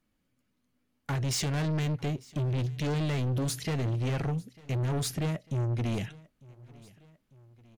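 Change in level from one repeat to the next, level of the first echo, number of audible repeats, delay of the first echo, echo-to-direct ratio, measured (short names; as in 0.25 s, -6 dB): -4.5 dB, -23.0 dB, 2, 0.898 s, -21.5 dB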